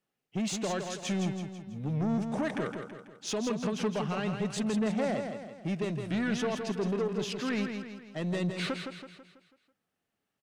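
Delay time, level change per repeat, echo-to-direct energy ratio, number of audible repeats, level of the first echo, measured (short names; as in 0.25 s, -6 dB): 0.164 s, -6.5 dB, -5.5 dB, 5, -6.5 dB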